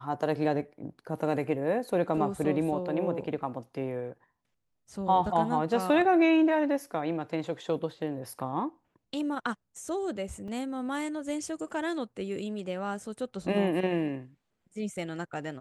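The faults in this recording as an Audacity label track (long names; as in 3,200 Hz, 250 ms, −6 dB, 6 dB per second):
10.480000	10.480000	drop-out 3.5 ms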